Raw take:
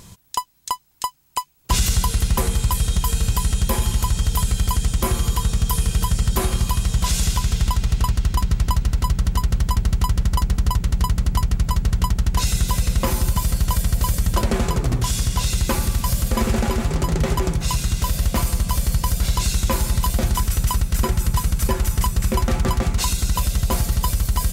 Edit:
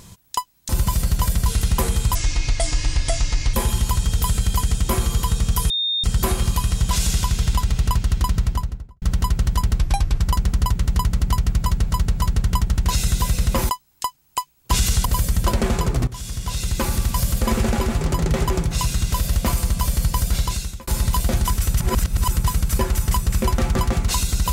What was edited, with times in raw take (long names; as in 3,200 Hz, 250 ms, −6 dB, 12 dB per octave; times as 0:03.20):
0:00.69–0:02.05: swap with 0:13.18–0:13.95
0:02.74–0:03.67: play speed 67%
0:05.83–0:06.17: beep over 3,660 Hz −19 dBFS
0:08.45–0:09.15: fade out and dull
0:09.92–0:10.26: play speed 80%
0:11.63–0:11.91: repeat, 3 plays
0:14.97–0:15.90: fade in, from −14.5 dB
0:19.25–0:19.77: fade out
0:20.70–0:21.18: reverse